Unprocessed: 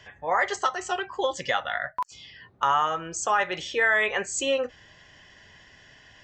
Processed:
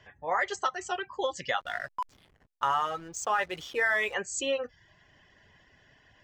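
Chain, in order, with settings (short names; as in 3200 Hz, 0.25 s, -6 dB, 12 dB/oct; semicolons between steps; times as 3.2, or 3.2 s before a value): reverb removal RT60 0.51 s; 1.6–4.14 backlash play -38 dBFS; mismatched tape noise reduction decoder only; gain -4 dB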